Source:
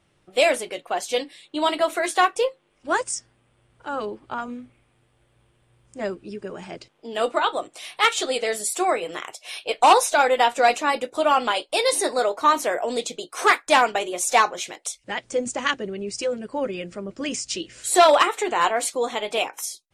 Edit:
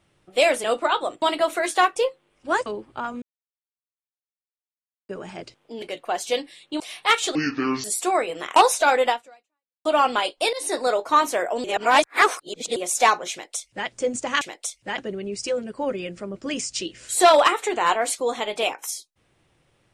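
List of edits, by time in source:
0:00.64–0:01.62: swap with 0:07.16–0:07.74
0:03.06–0:04.00: remove
0:04.56–0:06.43: silence
0:08.29–0:08.58: play speed 59%
0:09.30–0:09.88: remove
0:10.40–0:11.17: fade out exponential
0:11.85–0:12.21: fade in equal-power, from −19.5 dB
0:12.96–0:14.08: reverse
0:14.63–0:15.20: duplicate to 0:15.73

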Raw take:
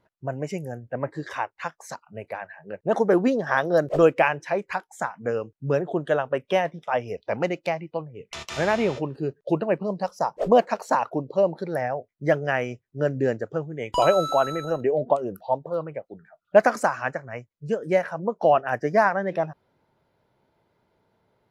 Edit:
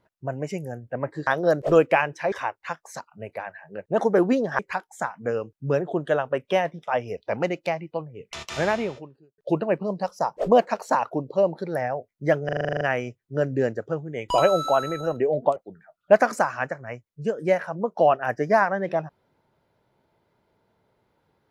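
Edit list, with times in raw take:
0:03.54–0:04.59: move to 0:01.27
0:08.67–0:09.38: fade out quadratic
0:12.45: stutter 0.04 s, 10 plays
0:15.20–0:16.00: remove

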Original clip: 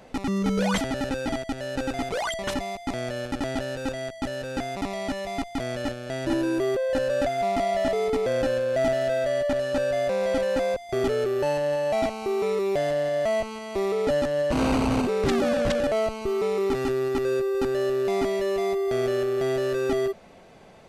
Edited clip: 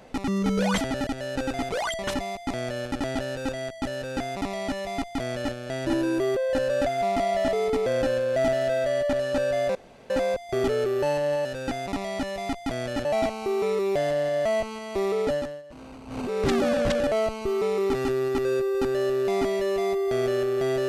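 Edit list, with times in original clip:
0:01.07–0:01.47: remove
0:04.34–0:05.94: duplicate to 0:11.85
0:10.15–0:10.50: fill with room tone
0:14.01–0:15.27: duck −21 dB, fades 0.41 s

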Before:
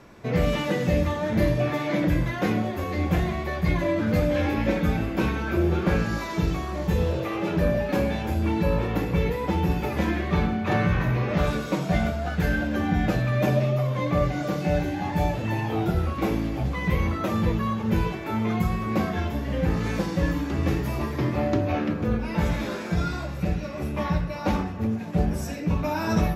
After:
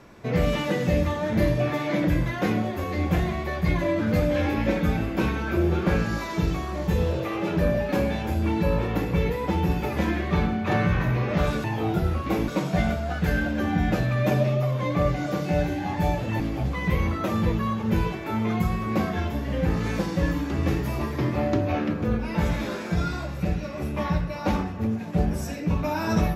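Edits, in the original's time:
0:15.56–0:16.40: move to 0:11.64

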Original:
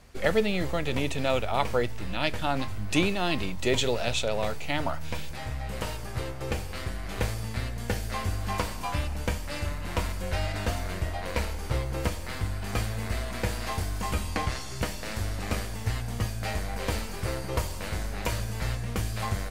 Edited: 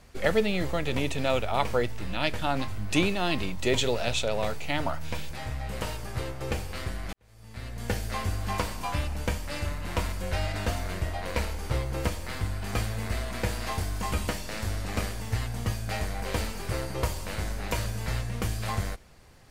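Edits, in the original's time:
0:07.13–0:07.87: fade in quadratic
0:14.28–0:14.82: remove

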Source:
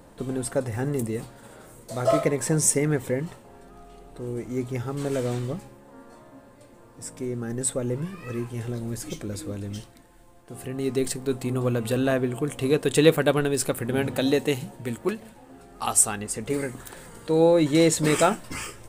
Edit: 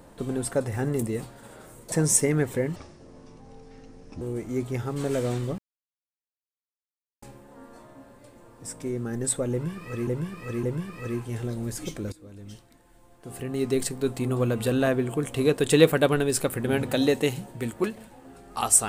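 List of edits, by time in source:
0:01.92–0:02.45: remove
0:03.29–0:04.22: play speed 64%
0:05.59: splice in silence 1.64 s
0:07.88–0:08.44: repeat, 3 plays
0:09.37–0:10.58: fade in, from −19.5 dB

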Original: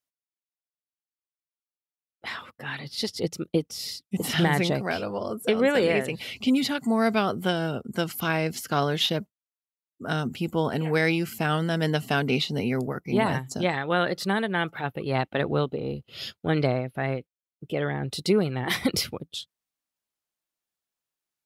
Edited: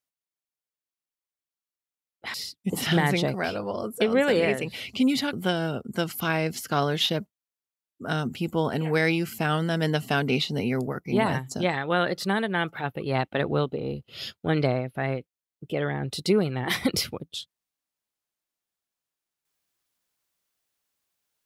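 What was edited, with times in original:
0:02.34–0:03.81: remove
0:06.80–0:07.33: remove

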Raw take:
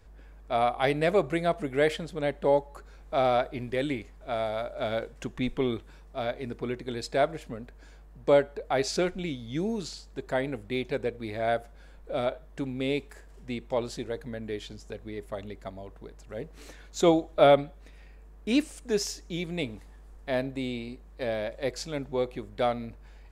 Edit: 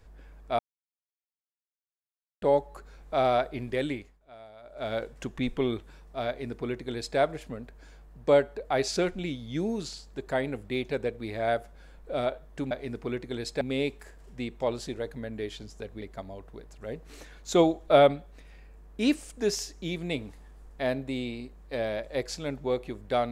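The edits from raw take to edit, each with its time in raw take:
0:00.59–0:02.42: silence
0:03.72–0:05.10: duck −18.5 dB, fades 0.48 s equal-power
0:06.28–0:07.18: duplicate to 0:12.71
0:15.11–0:15.49: remove

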